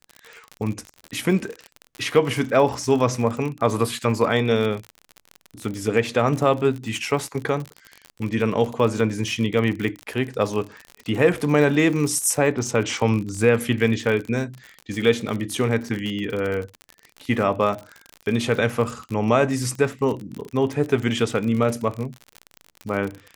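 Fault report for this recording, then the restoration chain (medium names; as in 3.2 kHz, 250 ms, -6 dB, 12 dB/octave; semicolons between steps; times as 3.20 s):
crackle 51 per s -27 dBFS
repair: de-click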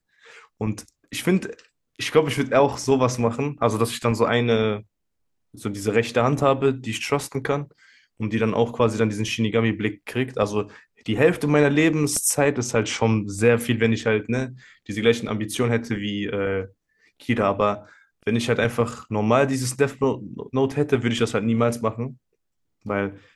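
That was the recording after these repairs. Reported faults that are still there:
nothing left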